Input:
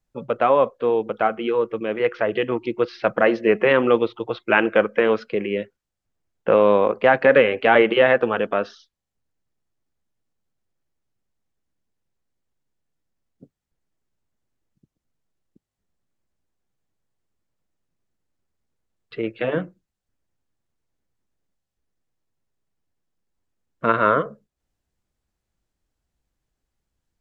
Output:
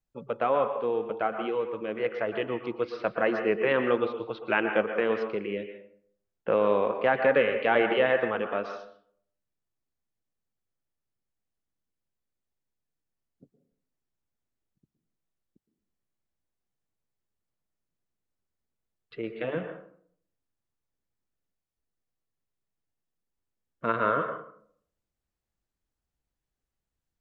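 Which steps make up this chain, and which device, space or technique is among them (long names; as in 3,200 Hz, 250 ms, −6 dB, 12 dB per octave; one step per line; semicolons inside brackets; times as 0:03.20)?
filtered reverb send (on a send: high-pass filter 490 Hz 6 dB per octave + low-pass filter 3,200 Hz 12 dB per octave + convolution reverb RT60 0.60 s, pre-delay 111 ms, DRR 6 dB)
on the sum: level −8.5 dB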